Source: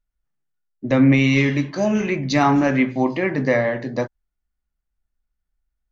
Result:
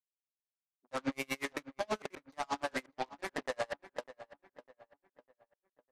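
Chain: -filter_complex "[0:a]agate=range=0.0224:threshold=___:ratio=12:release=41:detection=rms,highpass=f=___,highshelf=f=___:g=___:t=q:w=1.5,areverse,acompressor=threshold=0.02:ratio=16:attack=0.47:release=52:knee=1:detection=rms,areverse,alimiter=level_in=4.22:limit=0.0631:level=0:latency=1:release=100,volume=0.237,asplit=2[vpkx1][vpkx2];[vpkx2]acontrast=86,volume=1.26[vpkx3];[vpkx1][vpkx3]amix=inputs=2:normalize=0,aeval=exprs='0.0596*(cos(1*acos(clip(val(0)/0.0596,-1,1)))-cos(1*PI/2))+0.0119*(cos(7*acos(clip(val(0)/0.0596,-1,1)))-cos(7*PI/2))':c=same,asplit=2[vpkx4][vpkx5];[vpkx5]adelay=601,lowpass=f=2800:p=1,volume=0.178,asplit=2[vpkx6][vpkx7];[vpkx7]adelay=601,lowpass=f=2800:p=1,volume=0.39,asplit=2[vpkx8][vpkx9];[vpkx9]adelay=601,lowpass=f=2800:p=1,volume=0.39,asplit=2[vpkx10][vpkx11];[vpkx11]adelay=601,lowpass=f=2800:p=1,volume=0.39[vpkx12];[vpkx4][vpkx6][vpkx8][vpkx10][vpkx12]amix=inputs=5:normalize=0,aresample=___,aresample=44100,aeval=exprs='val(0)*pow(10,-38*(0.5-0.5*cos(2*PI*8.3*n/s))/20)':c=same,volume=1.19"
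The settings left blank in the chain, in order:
0.0891, 740, 1700, -9, 32000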